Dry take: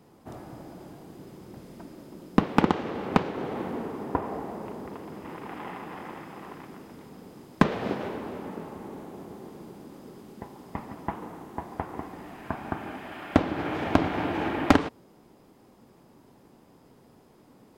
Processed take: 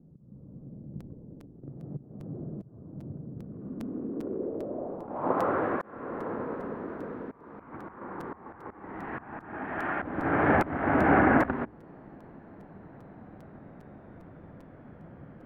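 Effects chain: speed glide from 167% -> 63%; bell 8500 Hz -13.5 dB 3 oct; notches 60/120/180/240/300/360/420 Hz; auto swell 0.478 s; low-pass sweep 150 Hz -> 1700 Hz, 3.49–5.67; crackling interface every 0.40 s, samples 256, repeat, from 1; gain +8.5 dB

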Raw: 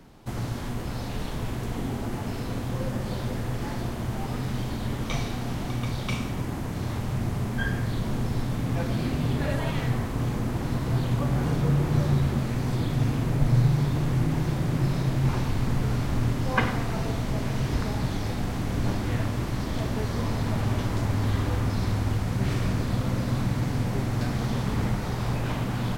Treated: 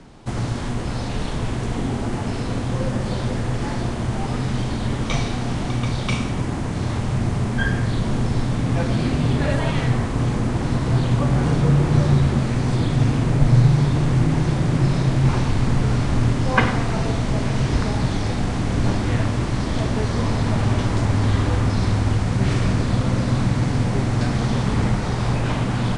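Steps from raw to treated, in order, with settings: steep low-pass 10000 Hz 72 dB/oct; gain +6.5 dB

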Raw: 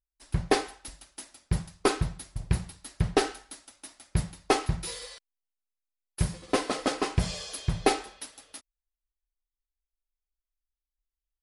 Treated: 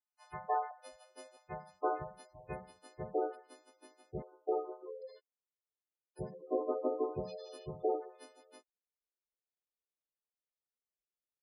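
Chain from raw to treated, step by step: frequency quantiser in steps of 3 st; band-pass sweep 900 Hz -> 450 Hz, 0.02–3.93; limiter -25.5 dBFS, peak gain reduction 10.5 dB; spectral gate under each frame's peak -15 dB strong; 0.71–1.37 resonant low shelf 640 Hz +7.5 dB, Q 3; 4.22–5.02 brick-wall FIR band-pass 310–1500 Hz; gain +3 dB

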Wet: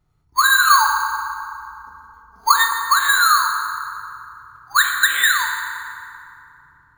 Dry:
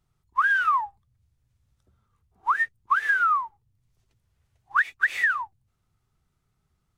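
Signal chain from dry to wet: 0.68–2.54 comb 4.4 ms, depth 98%; careless resampling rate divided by 8×, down filtered, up hold; FDN reverb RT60 2.8 s, low-frequency decay 1.35×, high-frequency decay 0.55×, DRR 0.5 dB; gain +5.5 dB

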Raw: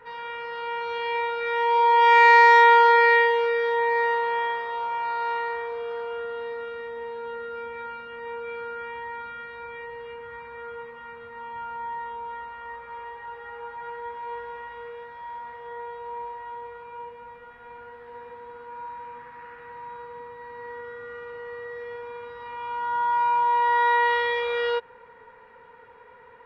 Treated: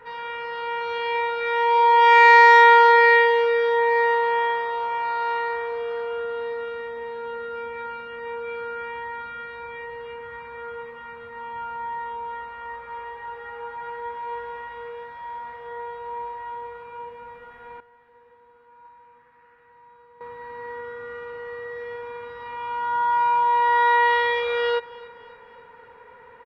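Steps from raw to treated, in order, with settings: 17.8–20.21 gate -34 dBFS, range -15 dB; feedback echo 0.284 s, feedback 51%, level -21 dB; gain +2.5 dB

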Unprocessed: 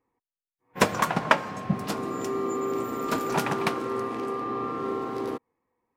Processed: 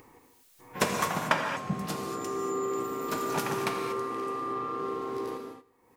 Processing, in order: high shelf 4600 Hz +6 dB; upward compressor, threshold -28 dBFS; feedback echo 79 ms, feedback 56%, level -21.5 dB; non-linear reverb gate 0.26 s flat, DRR 2.5 dB; gain -6.5 dB

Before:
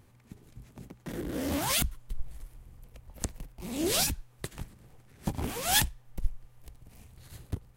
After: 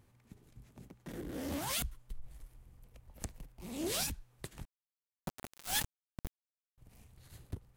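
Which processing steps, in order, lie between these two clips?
one diode to ground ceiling -22 dBFS; 4.65–6.78 sample gate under -26.5 dBFS; gain -6.5 dB

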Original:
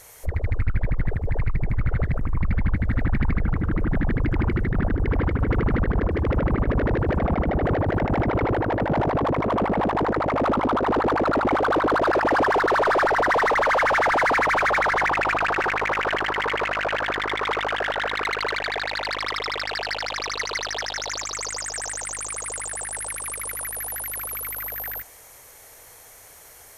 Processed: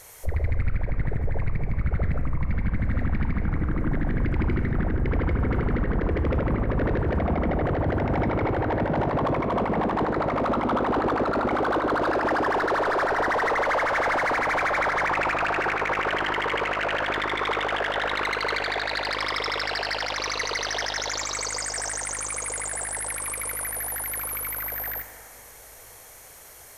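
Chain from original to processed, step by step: on a send at -7 dB: reverb RT60 3.0 s, pre-delay 5 ms; on the sum: limiter -17 dBFS, peak gain reduction 8.5 dB

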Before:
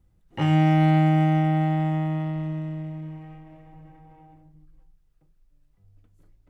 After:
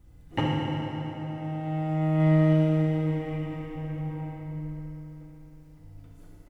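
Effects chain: negative-ratio compressor -28 dBFS, ratio -0.5; echo 80 ms -10.5 dB; FDN reverb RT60 3.8 s, high-frequency decay 0.75×, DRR -5 dB

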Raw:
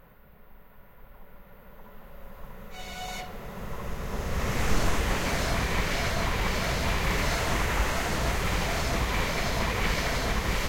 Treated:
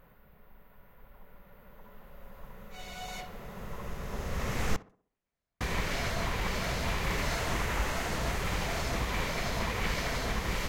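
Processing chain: 4.76–5.61 gate -15 dBFS, range -58 dB; tape echo 64 ms, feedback 47%, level -15 dB, low-pass 1500 Hz; gain -4.5 dB

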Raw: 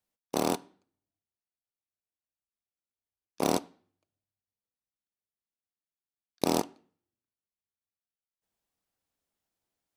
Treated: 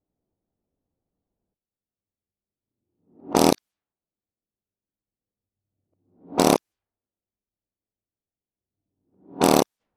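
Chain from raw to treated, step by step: whole clip reversed; low-pass opened by the level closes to 430 Hz, open at -30 dBFS; maximiser +13.5 dB; gain -1 dB

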